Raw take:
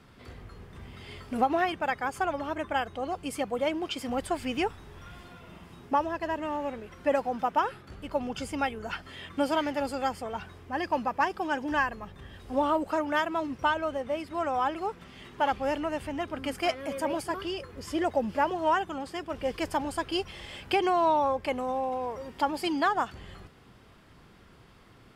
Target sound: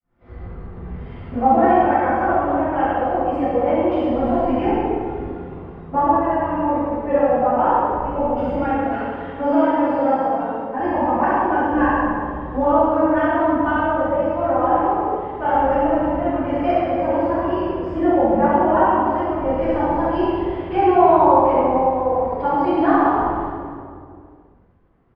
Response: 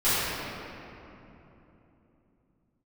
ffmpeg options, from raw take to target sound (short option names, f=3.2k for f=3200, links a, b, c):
-filter_complex "[0:a]asettb=1/sr,asplit=3[a][b][c];[a]atrim=end=8.724[d];[b]atrim=start=8.72:end=10.78,asetpts=PTS-STARTPTS,afade=t=in:d=0.004:c=qsin,afade=t=out:st=2.056:d=0.004:c=qsin,highpass=190[e];[c]atrim=start=10.776[f];[d][e]acrossfade=d=0.004:c1=hsin:c2=qsin[g];[g][f]acrossfade=d=0.004:c1=qsin:c2=hsin,aecho=1:1:67.06|110.8:0.562|0.251,aeval=exprs='sgn(val(0))*max(abs(val(0))-0.00112,0)':c=same,agate=range=-33dB:threshold=-48dB:ratio=3:detection=peak,lowpass=1.2k[h];[1:a]atrim=start_sample=2205,asetrate=74970,aresample=44100[i];[h][i]afir=irnorm=-1:irlink=0,volume=-2dB"